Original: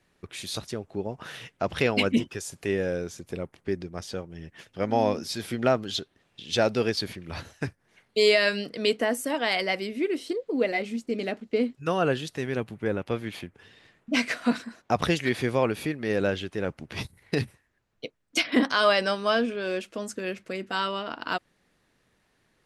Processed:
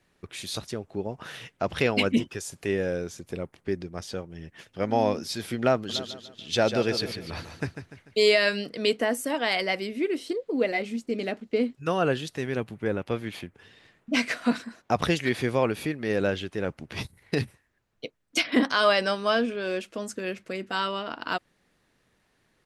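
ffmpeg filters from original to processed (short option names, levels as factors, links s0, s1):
-filter_complex "[0:a]asplit=3[s0][s1][s2];[s0]afade=t=out:st=5.89:d=0.02[s3];[s1]aecho=1:1:147|294|441|588|735:0.355|0.149|0.0626|0.0263|0.011,afade=t=in:st=5.89:d=0.02,afade=t=out:st=8.24:d=0.02[s4];[s2]afade=t=in:st=8.24:d=0.02[s5];[s3][s4][s5]amix=inputs=3:normalize=0"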